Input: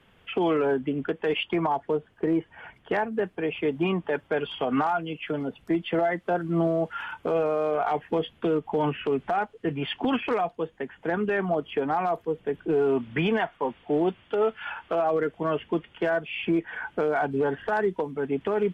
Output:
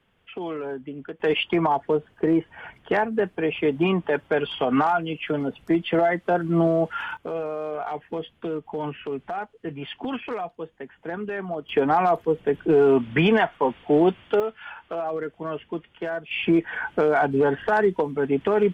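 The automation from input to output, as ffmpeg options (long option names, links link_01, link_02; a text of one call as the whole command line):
ffmpeg -i in.wav -af "asetnsamples=nb_out_samples=441:pad=0,asendcmd='1.2 volume volume 4dB;7.17 volume volume -4.5dB;11.69 volume volume 6dB;14.4 volume volume -4dB;16.31 volume volume 5dB',volume=-7.5dB" out.wav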